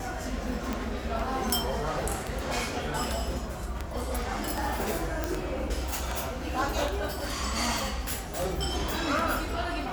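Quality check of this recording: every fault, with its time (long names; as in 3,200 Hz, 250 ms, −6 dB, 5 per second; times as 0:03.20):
scratch tick −16 dBFS
0:05.24: click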